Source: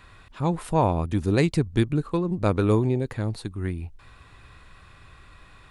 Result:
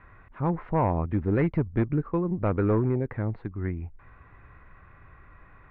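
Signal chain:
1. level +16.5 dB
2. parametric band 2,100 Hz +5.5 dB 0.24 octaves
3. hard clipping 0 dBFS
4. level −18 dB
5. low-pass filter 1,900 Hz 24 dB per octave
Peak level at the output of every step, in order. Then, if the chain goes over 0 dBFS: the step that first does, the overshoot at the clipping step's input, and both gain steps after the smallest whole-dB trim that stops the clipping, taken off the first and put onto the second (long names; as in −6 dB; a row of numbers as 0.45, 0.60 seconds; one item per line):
+8.5, +9.0, 0.0, −18.0, −16.5 dBFS
step 1, 9.0 dB
step 1 +7.5 dB, step 4 −9 dB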